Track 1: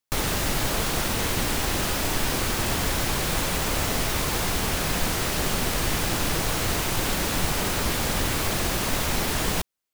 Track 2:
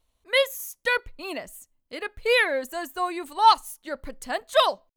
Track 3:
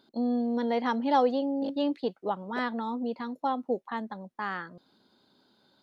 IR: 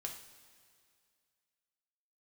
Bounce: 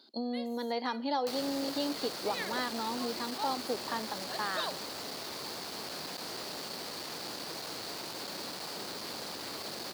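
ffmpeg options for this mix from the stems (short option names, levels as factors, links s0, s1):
-filter_complex "[0:a]acrossover=split=420|1200[s0][s1][s2];[s0]acompressor=threshold=0.0251:ratio=4[s3];[s1]acompressor=threshold=0.0112:ratio=4[s4];[s2]acompressor=threshold=0.00891:ratio=4[s5];[s3][s4][s5]amix=inputs=3:normalize=0,asoftclip=type=hard:threshold=0.0316,adelay=1150,volume=0.531[s6];[1:a]volume=0.178,asplit=2[s7][s8];[s8]volume=0.0891[s9];[2:a]volume=0.891,asplit=3[s10][s11][s12];[s11]volume=0.119[s13];[s12]apad=whole_len=218870[s14];[s7][s14]sidechaincompress=threshold=0.0158:ratio=8:attack=16:release=143[s15];[s15][s10]amix=inputs=2:normalize=0,acompressor=threshold=0.0316:ratio=6,volume=1[s16];[3:a]atrim=start_sample=2205[s17];[s9][s13]amix=inputs=2:normalize=0[s18];[s18][s17]afir=irnorm=-1:irlink=0[s19];[s6][s16][s19]amix=inputs=3:normalize=0,highpass=260,equalizer=f=4500:t=o:w=0.47:g=14.5"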